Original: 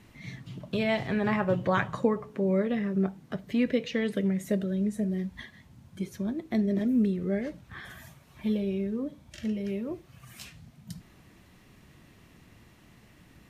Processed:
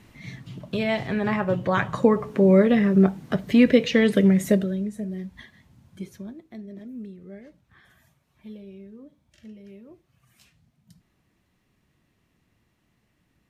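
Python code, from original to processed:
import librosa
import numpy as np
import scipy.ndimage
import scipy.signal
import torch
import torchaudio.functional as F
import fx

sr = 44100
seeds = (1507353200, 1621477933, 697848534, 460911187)

y = fx.gain(x, sr, db=fx.line((1.7, 2.5), (2.28, 10.0), (4.47, 10.0), (4.89, -2.0), (6.08, -2.0), (6.54, -13.0)))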